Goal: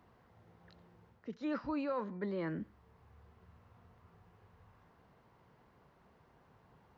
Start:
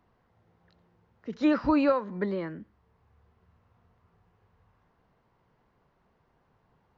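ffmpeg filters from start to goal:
-af "highpass=47,areverse,acompressor=threshold=-40dB:ratio=5,areverse,volume=3.5dB"

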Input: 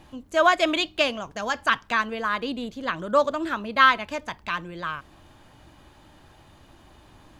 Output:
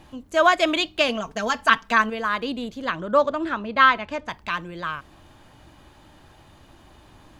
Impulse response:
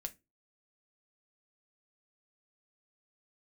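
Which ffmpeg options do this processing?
-filter_complex "[0:a]asettb=1/sr,asplit=3[a][b][c];[a]atrim=end=1.084[d];[b]atrim=start=1.08:end=2.1,asetpts=PTS-STARTPTS,afade=t=in:d=0.004:c=qsin,afade=t=out:st=1.016:d=0.004:c=qsin,aecho=1:1:4.5:0.75,atrim=end_sample=44982[e];[c]atrim=start=2.096[f];[d][e]acrossfade=d=0.004:c1=hsin:c2=qsin[g];[g][f]acrossfade=d=0.004:c1=qsin:c2=hsin,asettb=1/sr,asplit=3[h][i][j];[h]atrim=end=2.964[k];[i]atrim=start=2.96:end=4.29,asetpts=PTS-STARTPTS,afade=t=in:d=0.004:c=qsin,afade=t=out:st=1.326:d=0.004:c=qsin,aemphasis=mode=reproduction:type=50fm[l];[j]atrim=start=4.286[m];[k][l]acrossfade=d=0.004:c1=hsin:c2=qsin[n];[n][m]acrossfade=d=0.004:c1=qsin:c2=hsin,volume=1.5dB"

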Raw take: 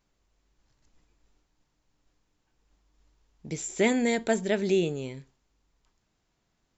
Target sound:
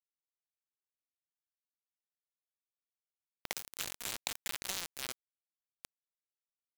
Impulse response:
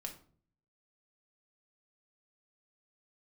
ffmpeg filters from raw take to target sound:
-af "highpass=480,afftfilt=real='re*lt(hypot(re,im),0.0282)':imag='im*lt(hypot(re,im),0.0282)':win_size=1024:overlap=0.75,acompressor=mode=upward:threshold=-30dB:ratio=2.5,acrusher=bits=4:mix=0:aa=0.000001,volume=2dB"

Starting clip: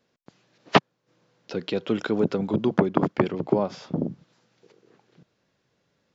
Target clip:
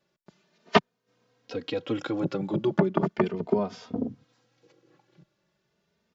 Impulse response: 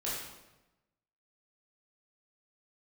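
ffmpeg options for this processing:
-filter_complex "[0:a]asplit=2[a][b];[b]adelay=3,afreqshift=0.37[c];[a][c]amix=inputs=2:normalize=1"

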